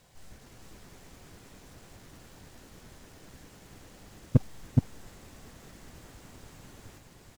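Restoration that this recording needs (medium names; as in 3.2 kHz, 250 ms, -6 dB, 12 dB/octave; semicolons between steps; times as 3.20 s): clip repair -11.5 dBFS; inverse comb 421 ms -3.5 dB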